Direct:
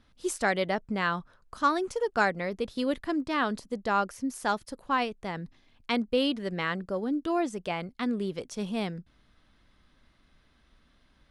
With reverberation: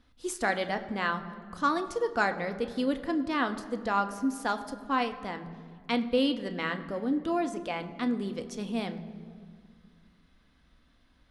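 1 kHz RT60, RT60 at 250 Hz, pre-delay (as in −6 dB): 1.9 s, 2.7 s, 3 ms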